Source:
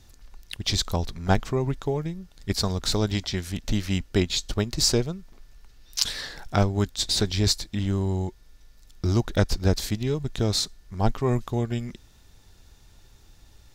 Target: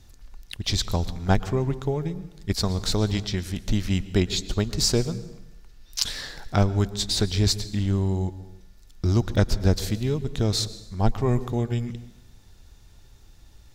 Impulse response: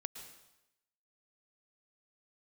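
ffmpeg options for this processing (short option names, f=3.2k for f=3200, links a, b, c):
-filter_complex "[0:a]asplit=2[a][b];[1:a]atrim=start_sample=2205,lowshelf=f=320:g=8[c];[b][c]afir=irnorm=-1:irlink=0,volume=-3dB[d];[a][d]amix=inputs=2:normalize=0,volume=-4.5dB"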